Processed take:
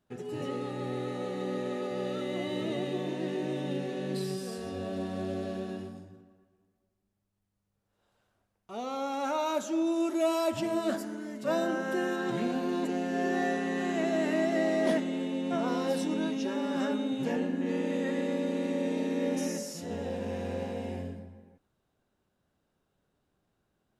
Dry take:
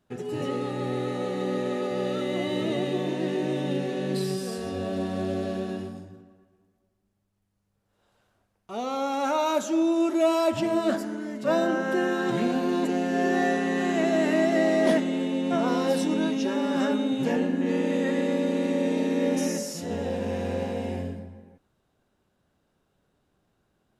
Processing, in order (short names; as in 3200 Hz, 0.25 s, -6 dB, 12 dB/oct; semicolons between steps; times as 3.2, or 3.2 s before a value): 9.86–12.16 high shelf 6900 Hz +7 dB; gain -5.5 dB